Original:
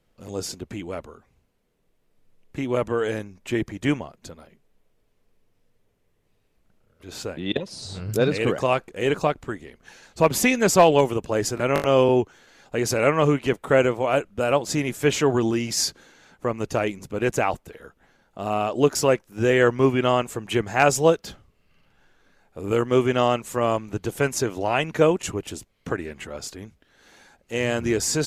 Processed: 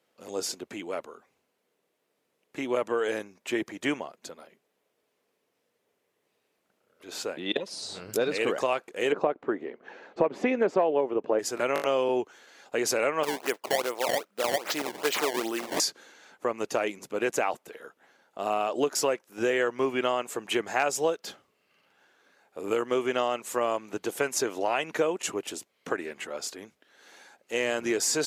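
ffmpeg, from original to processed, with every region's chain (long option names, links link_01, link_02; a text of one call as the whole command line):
ffmpeg -i in.wav -filter_complex "[0:a]asettb=1/sr,asplit=3[link_01][link_02][link_03];[link_01]atrim=end=9.124[link_04];[link_02]atrim=start=9.12:end=11.39,asetpts=PTS-STARTPTS,afade=type=in:duration=0.004:curve=qsin,afade=type=out:start_time=2.266:duration=0.004:curve=qsin,lowpass=2300,equalizer=frequency=370:width=0.49:gain=10[link_05];[link_03]atrim=start=11.386[link_06];[link_04][link_05]acrossfade=duration=0.004:curve1=hsin:curve2=qsin[link_07];[link_07][link_06]acrossfade=duration=0.004:curve1=qsin:curve2=hsin,asettb=1/sr,asplit=3[link_08][link_09][link_10];[link_08]atrim=end=13.234[link_11];[link_09]atrim=start=13.23:end=15.8,asetpts=PTS-STARTPTS,afade=type=in:duration=0.004:curve=qsin,afade=type=out:start_time=2.566:duration=0.004:curve=qsin,highpass=frequency=510:poles=1,acrusher=samples=20:mix=1:aa=0.000001:lfo=1:lforange=32:lforate=2.5[link_12];[link_10]atrim=start=15.796[link_13];[link_11][link_12]acrossfade=duration=0.004:curve1=hsin:curve2=qsin[link_14];[link_14][link_13]acrossfade=duration=0.004:curve1=qsin:curve2=hsin,highpass=350,acompressor=threshold=-22dB:ratio=6" out.wav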